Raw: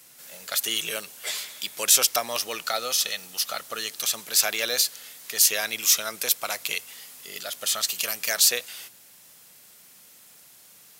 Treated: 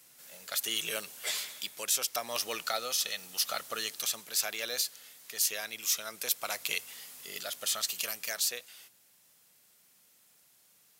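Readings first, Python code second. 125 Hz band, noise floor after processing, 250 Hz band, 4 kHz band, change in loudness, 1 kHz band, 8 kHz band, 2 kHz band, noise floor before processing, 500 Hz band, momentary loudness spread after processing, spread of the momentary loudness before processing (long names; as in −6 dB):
can't be measured, −65 dBFS, −7.0 dB, −8.0 dB, −8.5 dB, −6.5 dB, −9.0 dB, −7.5 dB, −52 dBFS, −7.5 dB, 11 LU, 15 LU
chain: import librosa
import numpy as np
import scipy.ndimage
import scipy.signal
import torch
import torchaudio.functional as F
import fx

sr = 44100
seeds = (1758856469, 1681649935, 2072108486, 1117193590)

y = fx.rider(x, sr, range_db=5, speed_s=0.5)
y = F.gain(torch.from_numpy(y), -8.0).numpy()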